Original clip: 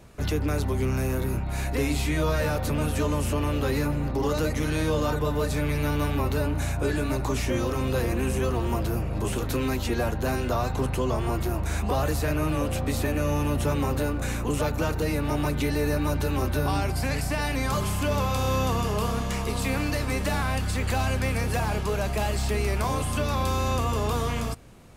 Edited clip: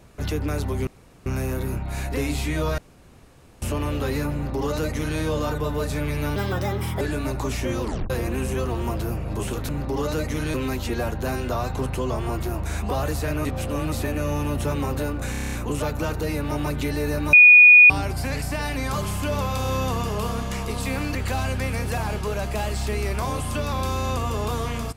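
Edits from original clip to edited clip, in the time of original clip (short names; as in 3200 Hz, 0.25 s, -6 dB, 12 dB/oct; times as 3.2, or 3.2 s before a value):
0.87 insert room tone 0.39 s
2.39–3.23 room tone
3.95–4.8 copy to 9.54
5.97–6.86 speed 137%
7.67 tape stop 0.28 s
12.45–12.92 reverse
14.31 stutter 0.03 s, 8 plays
16.12–16.69 bleep 2460 Hz -6.5 dBFS
19.94–20.77 cut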